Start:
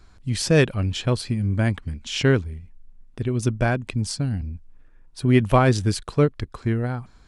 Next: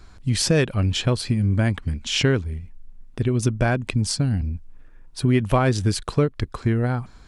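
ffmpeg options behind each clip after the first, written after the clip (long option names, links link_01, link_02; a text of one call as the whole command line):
ffmpeg -i in.wav -af "acompressor=threshold=-22dB:ratio=3,volume=5dB" out.wav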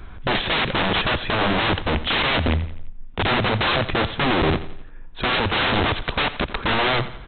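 ffmpeg -i in.wav -af "aresample=8000,aeval=exprs='(mod(15.8*val(0)+1,2)-1)/15.8':channel_layout=same,aresample=44100,aecho=1:1:86|172|258|344:0.188|0.0848|0.0381|0.0172,volume=8.5dB" out.wav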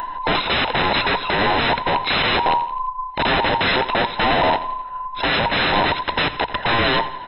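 ffmpeg -i in.wav -af "afftfilt=real='real(if(between(b,1,1008),(2*floor((b-1)/48)+1)*48-b,b),0)':imag='imag(if(between(b,1,1008),(2*floor((b-1)/48)+1)*48-b,b),0)*if(between(b,1,1008),-1,1)':win_size=2048:overlap=0.75,bandreject=frequency=60:width_type=h:width=6,bandreject=frequency=120:width_type=h:width=6,acompressor=mode=upward:threshold=-24dB:ratio=2.5,volume=2dB" out.wav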